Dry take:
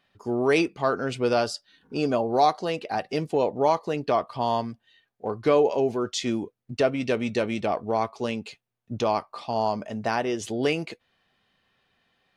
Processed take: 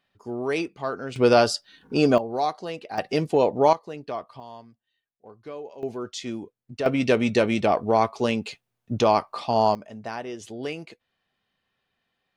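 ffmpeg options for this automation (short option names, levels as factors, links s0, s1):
-af "asetnsamples=n=441:p=0,asendcmd='1.16 volume volume 6dB;2.18 volume volume -5dB;2.98 volume volume 3.5dB;3.73 volume volume -8.5dB;4.4 volume volume -17.5dB;5.83 volume volume -5.5dB;6.86 volume volume 5dB;9.75 volume volume -7.5dB',volume=0.562"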